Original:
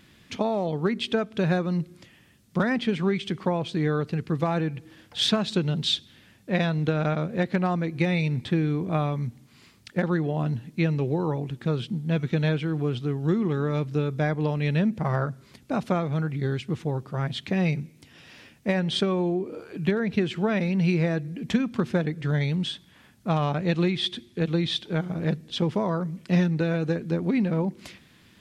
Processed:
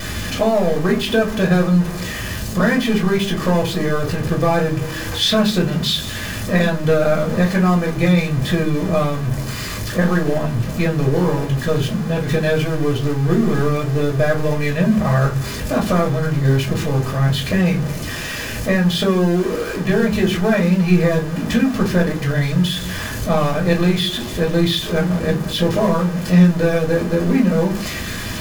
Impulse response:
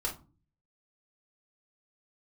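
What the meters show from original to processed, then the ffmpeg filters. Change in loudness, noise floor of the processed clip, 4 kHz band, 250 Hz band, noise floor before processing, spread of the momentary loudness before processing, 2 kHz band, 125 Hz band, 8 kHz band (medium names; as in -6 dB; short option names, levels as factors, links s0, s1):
+8.5 dB, -26 dBFS, +8.0 dB, +8.5 dB, -56 dBFS, 6 LU, +10.0 dB, +8.0 dB, no reading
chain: -filter_complex "[0:a]aeval=exprs='val(0)+0.5*0.0447*sgn(val(0))':c=same[s0];[1:a]atrim=start_sample=2205,asetrate=57330,aresample=44100[s1];[s0][s1]afir=irnorm=-1:irlink=0,volume=1.68"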